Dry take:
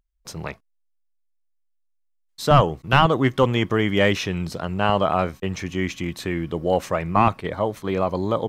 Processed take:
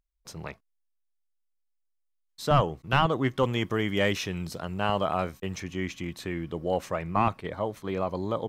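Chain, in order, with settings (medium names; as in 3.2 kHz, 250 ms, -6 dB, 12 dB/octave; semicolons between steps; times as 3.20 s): 3.43–5.60 s: treble shelf 6.5 kHz +8 dB; trim -7 dB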